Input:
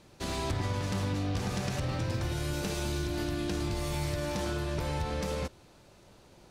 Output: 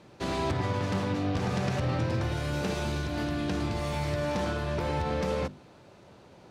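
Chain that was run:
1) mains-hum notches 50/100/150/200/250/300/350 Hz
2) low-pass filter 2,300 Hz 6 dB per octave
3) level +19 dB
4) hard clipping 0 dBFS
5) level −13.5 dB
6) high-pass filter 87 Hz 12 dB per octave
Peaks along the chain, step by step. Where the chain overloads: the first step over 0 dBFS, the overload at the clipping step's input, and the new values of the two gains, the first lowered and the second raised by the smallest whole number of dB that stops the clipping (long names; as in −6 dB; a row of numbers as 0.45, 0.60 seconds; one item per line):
−20.0, −22.5, −3.5, −3.5, −17.0, −16.5 dBFS
no step passes full scale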